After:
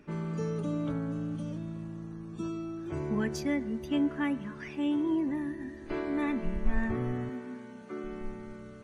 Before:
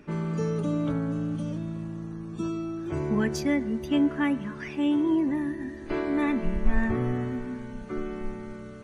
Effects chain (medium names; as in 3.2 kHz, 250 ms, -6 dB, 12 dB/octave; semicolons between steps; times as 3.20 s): 7.29–8.04 s: high-pass 210 Hz 12 dB/octave; trim -5 dB